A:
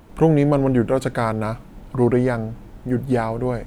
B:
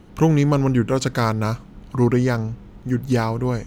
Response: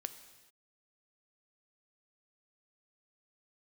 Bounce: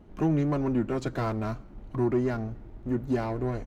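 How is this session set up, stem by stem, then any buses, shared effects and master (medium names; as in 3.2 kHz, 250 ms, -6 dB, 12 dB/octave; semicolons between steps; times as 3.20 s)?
-6.0 dB, 0.00 s, no send, median filter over 41 samples; compression, threshold -19 dBFS, peak gain reduction 8 dB
-7.5 dB, 2.7 ms, send -8.5 dB, flange 1.3 Hz, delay 4.7 ms, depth 1.8 ms, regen +47%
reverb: on, pre-delay 3 ms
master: treble shelf 2.8 kHz -10 dB; saturation -15.5 dBFS, distortion -23 dB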